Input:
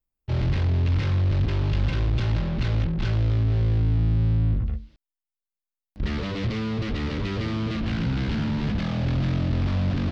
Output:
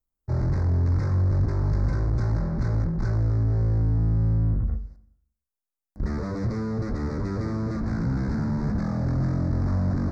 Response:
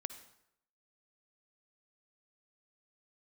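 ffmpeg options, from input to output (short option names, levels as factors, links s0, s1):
-filter_complex "[0:a]asuperstop=centerf=3000:order=4:qfactor=0.74,asplit=2[s0][s1];[1:a]atrim=start_sample=2205[s2];[s1][s2]afir=irnorm=-1:irlink=0,volume=1.88[s3];[s0][s3]amix=inputs=2:normalize=0,volume=0.398"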